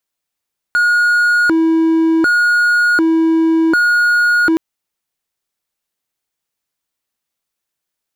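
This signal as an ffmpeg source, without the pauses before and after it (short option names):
-f lavfi -i "aevalsrc='0.422*(1-4*abs(mod((882.5*t+557.5/0.67*(0.5-abs(mod(0.67*t,1)-0.5)))+0.25,1)-0.5))':d=3.82:s=44100"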